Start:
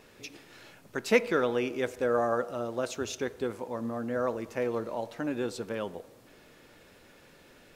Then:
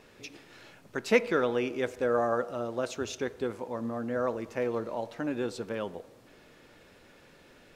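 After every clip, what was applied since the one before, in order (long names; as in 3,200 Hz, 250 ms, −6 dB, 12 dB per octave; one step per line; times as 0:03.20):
high-shelf EQ 9,500 Hz −8 dB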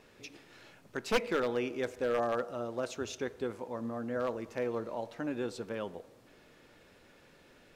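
wavefolder on the positive side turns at −19.5 dBFS
level −3.5 dB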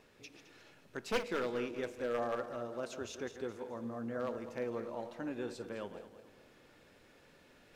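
feedback delay that plays each chunk backwards 107 ms, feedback 62%, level −10 dB
reversed playback
upward compression, threshold −52 dBFS
reversed playback
level −5 dB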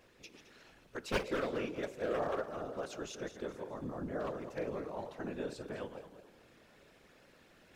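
random phases in short frames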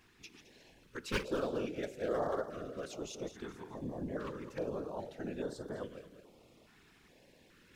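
notch on a step sequencer 2.4 Hz 560–2,500 Hz
level +1 dB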